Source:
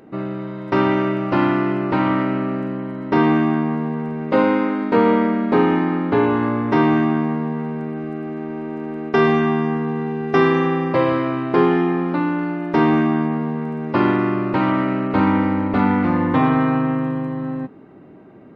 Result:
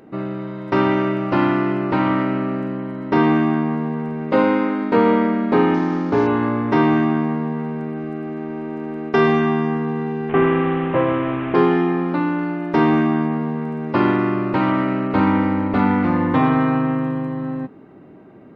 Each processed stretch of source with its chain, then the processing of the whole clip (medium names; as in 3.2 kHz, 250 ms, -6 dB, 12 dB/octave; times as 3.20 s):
5.74–6.27 s: CVSD coder 32 kbps + low-pass 2.3 kHz 6 dB/octave
10.29–11.55 s: one-bit delta coder 16 kbps, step -20.5 dBFS + distance through air 340 m
whole clip: none